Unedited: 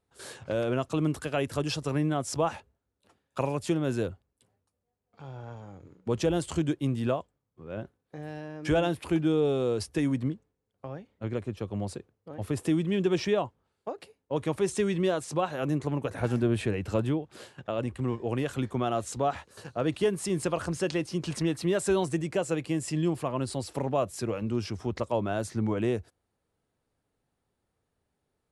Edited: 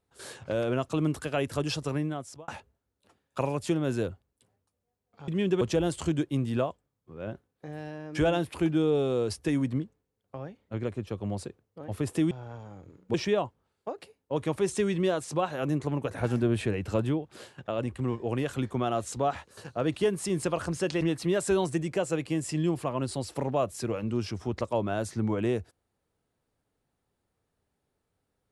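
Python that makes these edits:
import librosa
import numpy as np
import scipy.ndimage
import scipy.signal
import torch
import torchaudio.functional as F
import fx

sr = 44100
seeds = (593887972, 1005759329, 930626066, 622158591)

y = fx.edit(x, sr, fx.fade_out_span(start_s=1.83, length_s=0.65),
    fx.swap(start_s=5.28, length_s=0.83, other_s=12.81, other_length_s=0.33),
    fx.cut(start_s=21.01, length_s=0.39), tone=tone)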